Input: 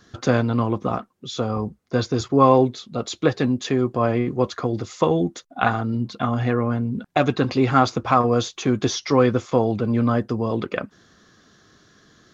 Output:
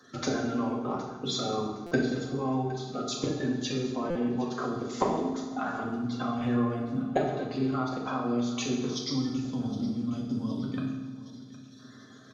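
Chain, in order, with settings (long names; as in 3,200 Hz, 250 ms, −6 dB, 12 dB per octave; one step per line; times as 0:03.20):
spectral magnitudes quantised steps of 30 dB
high-pass filter 130 Hz 24 dB per octave
gain on a spectral selection 0:08.93–0:11.79, 310–3,000 Hz −16 dB
downward compressor 20 to 1, threshold −28 dBFS, peak gain reduction 19 dB
transient designer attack +5 dB, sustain −4 dB
output level in coarse steps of 12 dB
repeating echo 764 ms, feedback 47%, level −17.5 dB
convolution reverb RT60 1.2 s, pre-delay 4 ms, DRR −3 dB
buffer that repeats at 0:01.86/0:04.10, samples 256, times 8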